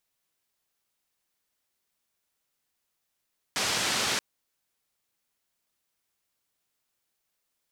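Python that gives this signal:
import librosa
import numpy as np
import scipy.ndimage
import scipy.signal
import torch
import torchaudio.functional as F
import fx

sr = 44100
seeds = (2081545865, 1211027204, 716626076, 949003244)

y = fx.band_noise(sr, seeds[0], length_s=0.63, low_hz=110.0, high_hz=5900.0, level_db=-28.0)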